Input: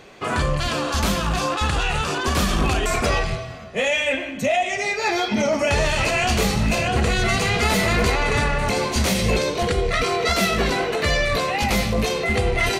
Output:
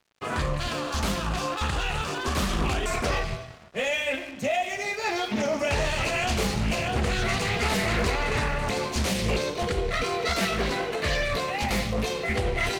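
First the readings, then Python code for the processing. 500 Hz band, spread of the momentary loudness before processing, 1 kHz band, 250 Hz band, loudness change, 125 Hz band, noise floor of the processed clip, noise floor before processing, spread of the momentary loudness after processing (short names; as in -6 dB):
-6.0 dB, 3 LU, -6.0 dB, -6.0 dB, -6.0 dB, -6.0 dB, -40 dBFS, -32 dBFS, 4 LU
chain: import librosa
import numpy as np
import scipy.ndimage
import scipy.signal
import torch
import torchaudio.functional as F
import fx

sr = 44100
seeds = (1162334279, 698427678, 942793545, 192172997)

y = np.sign(x) * np.maximum(np.abs(x) - 10.0 ** (-39.0 / 20.0), 0.0)
y = fx.doppler_dist(y, sr, depth_ms=0.35)
y = y * 10.0 ** (-5.0 / 20.0)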